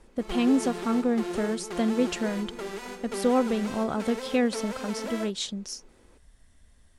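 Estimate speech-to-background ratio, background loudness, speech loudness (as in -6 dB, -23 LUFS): 8.0 dB, -36.0 LUFS, -28.0 LUFS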